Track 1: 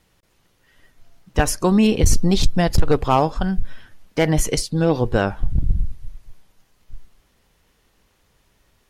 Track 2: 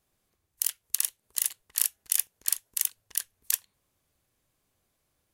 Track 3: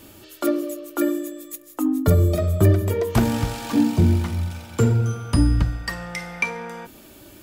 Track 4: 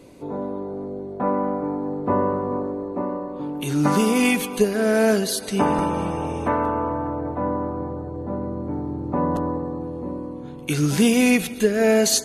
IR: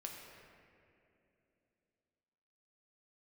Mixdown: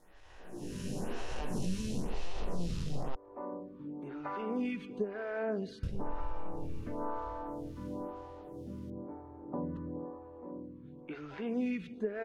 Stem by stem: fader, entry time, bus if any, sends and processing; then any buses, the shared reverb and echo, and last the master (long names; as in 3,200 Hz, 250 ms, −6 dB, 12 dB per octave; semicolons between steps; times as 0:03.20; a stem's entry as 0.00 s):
+1.5 dB, 0.00 s, muted 0:03.15–0:05.83, bus A, no send, spectrum smeared in time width 1,220 ms; high-shelf EQ 2,100 Hz +8.5 dB; multi-voice chorus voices 6, 0.53 Hz, delay 22 ms, depth 1.2 ms
muted
−17.5 dB, 0.10 s, bus A, no send, downward compressor, threshold −24 dBFS, peak gain reduction 12.5 dB; resonant band-pass 350 Hz, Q 3.3
−12.5 dB, 0.40 s, bus A, no send, low-pass filter 2,500 Hz 12 dB per octave
bus A: 0.0 dB, high-shelf EQ 6,600 Hz −10 dB; downward compressor 5 to 1, threshold −28 dBFS, peak gain reduction 14 dB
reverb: not used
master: phaser with staggered stages 1 Hz